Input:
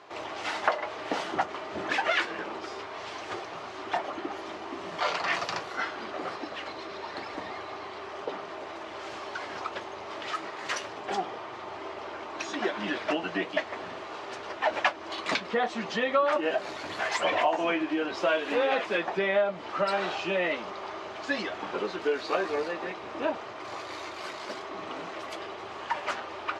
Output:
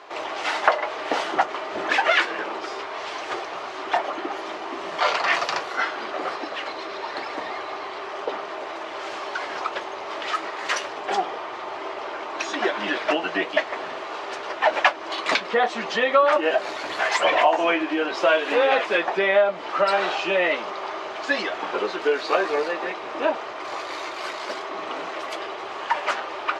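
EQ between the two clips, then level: tone controls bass -13 dB, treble -2 dB; +7.5 dB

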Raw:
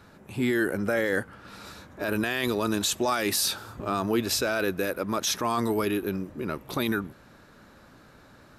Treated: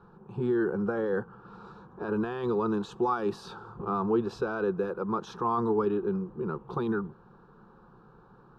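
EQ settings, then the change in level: LPF 1400 Hz 12 dB/oct; fixed phaser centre 410 Hz, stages 8; +2.0 dB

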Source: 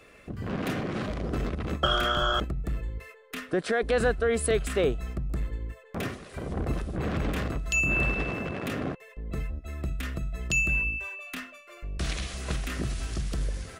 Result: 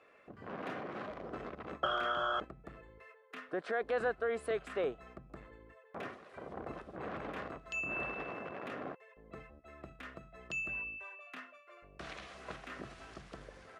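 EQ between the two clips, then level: band-pass 930 Hz, Q 0.83; -5.0 dB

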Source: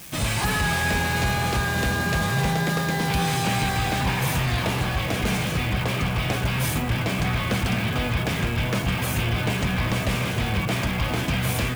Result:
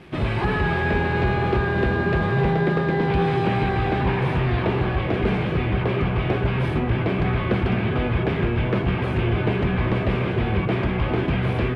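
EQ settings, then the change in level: LPF 11000 Hz 24 dB/oct; air absorption 450 m; bell 380 Hz +11.5 dB 0.36 oct; +2.5 dB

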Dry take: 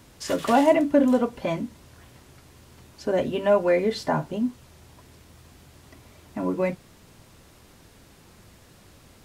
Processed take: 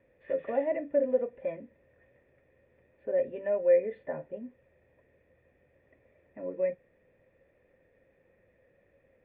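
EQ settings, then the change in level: vocal tract filter e; 0.0 dB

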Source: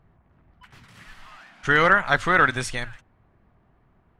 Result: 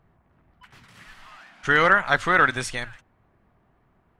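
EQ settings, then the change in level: low shelf 160 Hz -5 dB; 0.0 dB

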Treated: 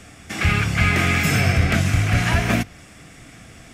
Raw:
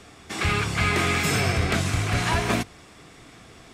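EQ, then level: dynamic EQ 8600 Hz, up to -7 dB, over -49 dBFS, Q 1.3; fifteen-band EQ 400 Hz -9 dB, 1000 Hz -10 dB, 4000 Hz -8 dB; +7.0 dB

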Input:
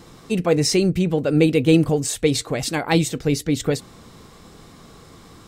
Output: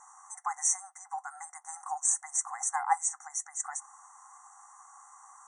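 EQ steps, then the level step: brick-wall FIR band-pass 730–9800 Hz; brick-wall FIR band-stop 2100–5700 Hz; band shelf 2500 Hz -11.5 dB; 0.0 dB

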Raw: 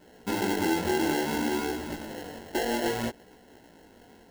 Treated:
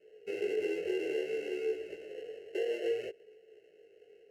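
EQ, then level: double band-pass 1100 Hz, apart 2.7 oct; fixed phaser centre 940 Hz, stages 6; +6.0 dB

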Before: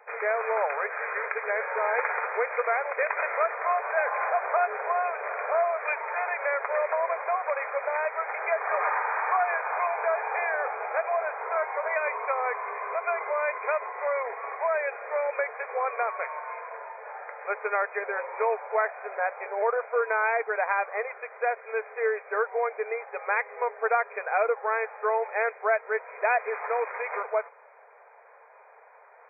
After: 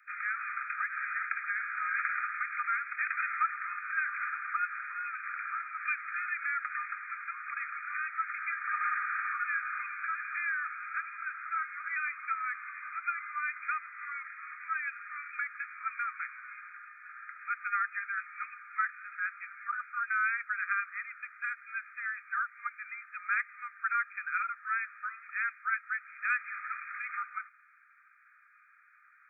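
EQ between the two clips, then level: Chebyshev high-pass 1200 Hz, order 10; bell 2100 Hz -4.5 dB 0.41 oct; 0.0 dB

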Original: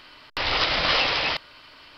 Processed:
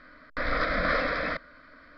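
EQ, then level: Chebyshev low-pass 1700 Hz, order 2; bell 930 Hz -9.5 dB 1.3 oct; fixed phaser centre 570 Hz, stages 8; +6.5 dB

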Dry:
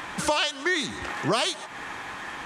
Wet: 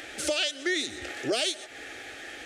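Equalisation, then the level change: low shelf 85 Hz -7.5 dB; fixed phaser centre 430 Hz, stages 4; notch 920 Hz, Q 9.6; 0.0 dB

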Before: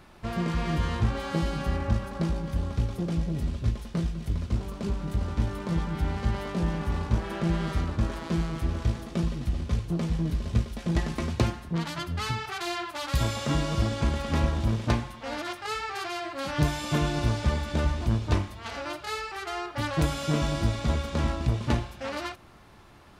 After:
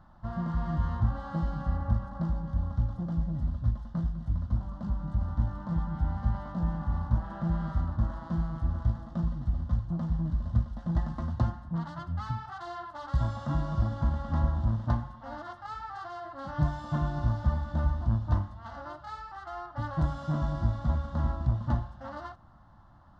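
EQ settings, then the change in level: tape spacing loss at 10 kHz 31 dB; fixed phaser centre 1000 Hz, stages 4; 0.0 dB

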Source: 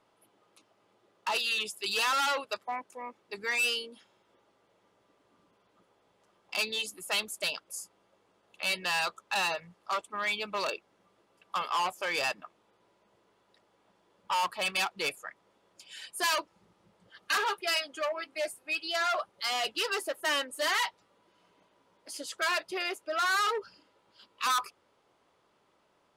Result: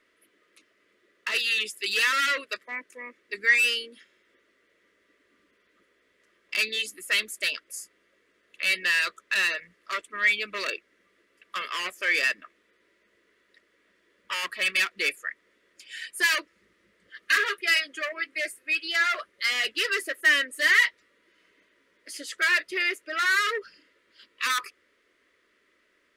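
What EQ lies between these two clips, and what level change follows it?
bell 1900 Hz +14.5 dB 0.65 oct; fixed phaser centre 340 Hz, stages 4; +2.0 dB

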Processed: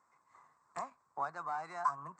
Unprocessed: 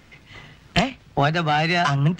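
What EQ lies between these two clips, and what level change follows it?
double band-pass 2900 Hz, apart 2.9 oct; air absorption 76 m; -3.5 dB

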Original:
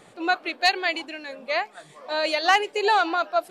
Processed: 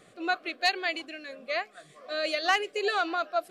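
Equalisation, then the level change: Butterworth band-stop 900 Hz, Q 3.5; -5.0 dB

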